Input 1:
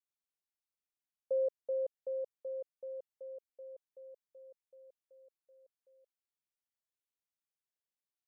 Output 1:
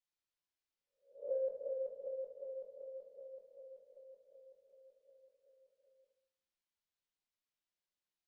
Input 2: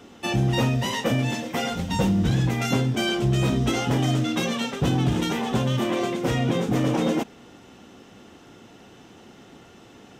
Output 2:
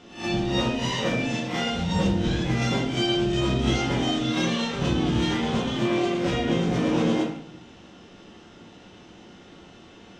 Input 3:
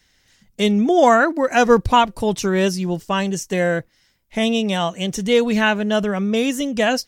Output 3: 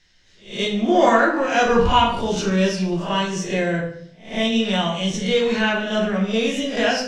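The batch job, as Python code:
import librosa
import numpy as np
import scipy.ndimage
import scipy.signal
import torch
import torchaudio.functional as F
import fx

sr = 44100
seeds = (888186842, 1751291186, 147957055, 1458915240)

p1 = fx.spec_swells(x, sr, rise_s=0.4)
p2 = fx.high_shelf(p1, sr, hz=3100.0, db=12.0)
p3 = 10.0 ** (-17.0 / 20.0) * np.tanh(p2 / 10.0 ** (-17.0 / 20.0))
p4 = p2 + (p3 * 10.0 ** (-10.0 / 20.0))
p5 = fx.air_absorb(p4, sr, metres=140.0)
p6 = p5 + fx.echo_single(p5, sr, ms=150, db=-20.5, dry=0)
p7 = fx.room_shoebox(p6, sr, seeds[0], volume_m3=98.0, walls='mixed', distance_m=0.94)
y = p7 * 10.0 ** (-8.5 / 20.0)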